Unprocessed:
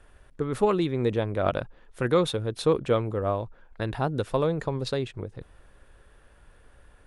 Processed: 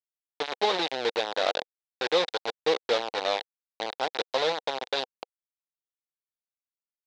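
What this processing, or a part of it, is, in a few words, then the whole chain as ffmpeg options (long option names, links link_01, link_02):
hand-held game console: -af "acrusher=bits=3:mix=0:aa=0.000001,highpass=480,equalizer=frequency=490:width_type=q:width=4:gain=4,equalizer=frequency=790:width_type=q:width=4:gain=5,equalizer=frequency=1200:width_type=q:width=4:gain=-5,equalizer=frequency=3800:width_type=q:width=4:gain=9,lowpass=frequency=5200:width=0.5412,lowpass=frequency=5200:width=1.3066,volume=-2.5dB"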